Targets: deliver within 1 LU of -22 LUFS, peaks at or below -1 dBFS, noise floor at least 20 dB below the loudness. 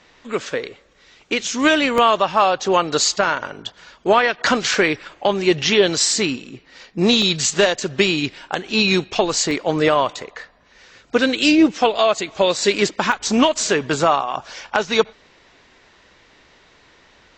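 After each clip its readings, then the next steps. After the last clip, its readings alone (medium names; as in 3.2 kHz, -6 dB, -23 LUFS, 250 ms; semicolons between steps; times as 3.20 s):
dropouts 6; longest dropout 1.6 ms; loudness -18.0 LUFS; peak level -2.0 dBFS; loudness target -22.0 LUFS
-> interpolate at 1.98/4.74/6.11/7.22/9.51/13.12 s, 1.6 ms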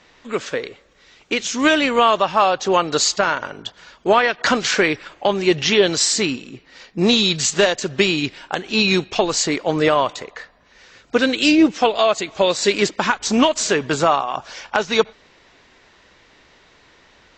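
dropouts 0; loudness -18.0 LUFS; peak level -2.0 dBFS; loudness target -22.0 LUFS
-> trim -4 dB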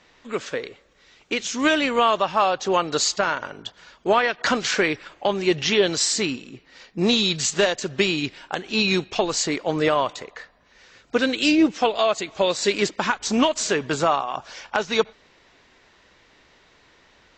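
loudness -22.0 LUFS; peak level -6.0 dBFS; noise floor -57 dBFS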